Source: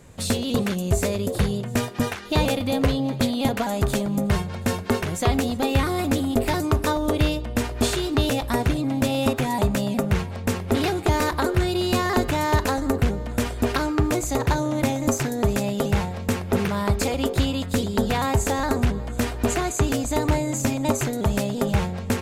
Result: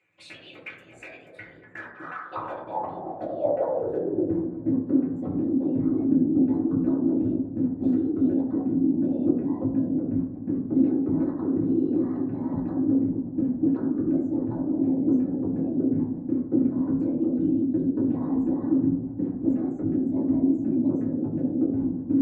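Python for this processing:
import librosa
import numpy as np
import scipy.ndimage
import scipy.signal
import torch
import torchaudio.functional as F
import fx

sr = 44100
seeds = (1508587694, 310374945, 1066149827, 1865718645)

y = fx.envelope_sharpen(x, sr, power=1.5)
y = fx.peak_eq(y, sr, hz=410.0, db=-13.0, octaves=0.43, at=(12.02, 12.75))
y = fx.whisperise(y, sr, seeds[0])
y = fx.filter_sweep_bandpass(y, sr, from_hz=2400.0, to_hz=260.0, start_s=1.22, end_s=4.77, q=7.1)
y = fx.echo_tape(y, sr, ms=229, feedback_pct=59, wet_db=-16.5, lp_hz=2100.0, drive_db=20.0, wow_cents=24)
y = fx.rev_fdn(y, sr, rt60_s=0.73, lf_ratio=1.0, hf_ratio=0.3, size_ms=55.0, drr_db=-4.5)
y = F.gain(torch.from_numpy(y), 2.0).numpy()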